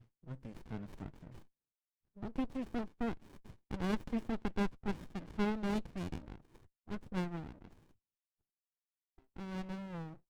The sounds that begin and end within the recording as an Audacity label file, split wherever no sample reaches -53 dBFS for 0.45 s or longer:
2.170000	7.730000	sound